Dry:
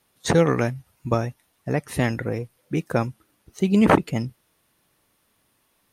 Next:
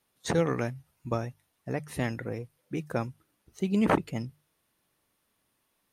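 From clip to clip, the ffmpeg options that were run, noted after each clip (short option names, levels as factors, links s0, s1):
-af "bandreject=f=50:t=h:w=6,bandreject=f=100:t=h:w=6,bandreject=f=150:t=h:w=6,volume=0.398"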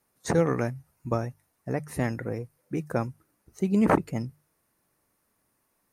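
-af "equalizer=f=3300:t=o:w=0.77:g=-11.5,volume=1.41"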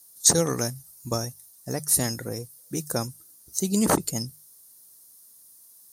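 -af "aexciter=amount=9.2:drive=7.4:freq=3600,volume=0.891"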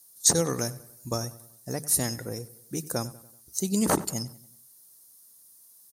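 -filter_complex "[0:a]asplit=2[s0][s1];[s1]adelay=95,lowpass=f=4300:p=1,volume=0.133,asplit=2[s2][s3];[s3]adelay=95,lowpass=f=4300:p=1,volume=0.49,asplit=2[s4][s5];[s5]adelay=95,lowpass=f=4300:p=1,volume=0.49,asplit=2[s6][s7];[s7]adelay=95,lowpass=f=4300:p=1,volume=0.49[s8];[s0][s2][s4][s6][s8]amix=inputs=5:normalize=0,volume=0.75"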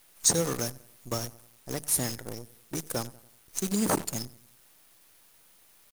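-af "acrusher=bits=6:dc=4:mix=0:aa=0.000001,volume=0.75"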